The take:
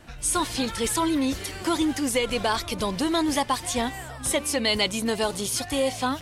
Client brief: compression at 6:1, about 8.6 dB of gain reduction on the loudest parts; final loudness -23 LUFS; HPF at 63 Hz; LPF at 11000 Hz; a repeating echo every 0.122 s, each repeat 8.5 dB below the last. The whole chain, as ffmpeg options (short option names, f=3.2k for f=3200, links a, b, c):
-af "highpass=63,lowpass=11k,acompressor=threshold=-29dB:ratio=6,aecho=1:1:122|244|366|488:0.376|0.143|0.0543|0.0206,volume=8.5dB"